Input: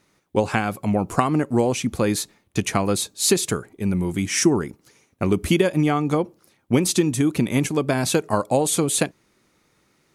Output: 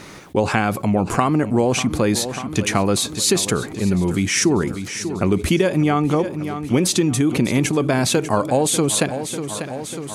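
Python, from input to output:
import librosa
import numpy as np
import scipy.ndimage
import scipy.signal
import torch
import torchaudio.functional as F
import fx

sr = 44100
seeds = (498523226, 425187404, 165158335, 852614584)

y = fx.high_shelf(x, sr, hz=9900.0, db=-8.5)
y = fx.echo_feedback(y, sr, ms=594, feedback_pct=50, wet_db=-18)
y = fx.env_flatten(y, sr, amount_pct=50)
y = y * librosa.db_to_amplitude(-1.0)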